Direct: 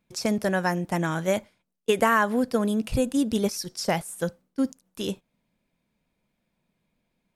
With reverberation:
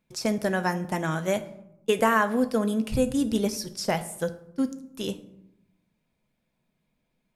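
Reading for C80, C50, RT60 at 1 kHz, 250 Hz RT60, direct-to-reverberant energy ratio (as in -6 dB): 18.0 dB, 15.0 dB, 0.75 s, 1.2 s, 9.5 dB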